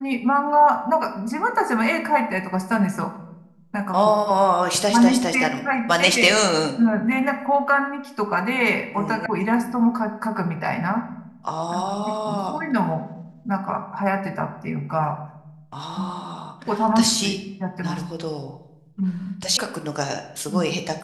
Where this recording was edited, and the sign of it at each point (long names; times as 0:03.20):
0:09.26: cut off before it has died away
0:19.57: cut off before it has died away